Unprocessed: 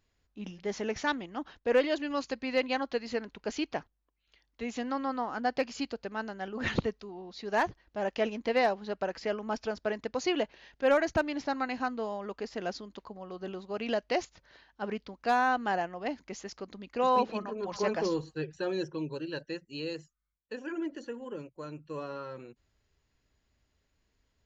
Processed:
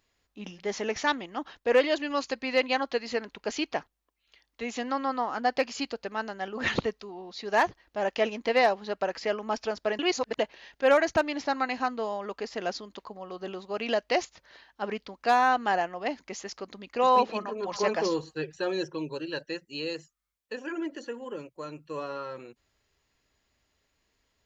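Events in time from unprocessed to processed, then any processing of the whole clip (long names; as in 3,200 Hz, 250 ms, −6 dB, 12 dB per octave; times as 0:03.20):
0:09.99–0:10.39: reverse
whole clip: low-shelf EQ 270 Hz −10 dB; notch filter 1,500 Hz, Q 22; level +5.5 dB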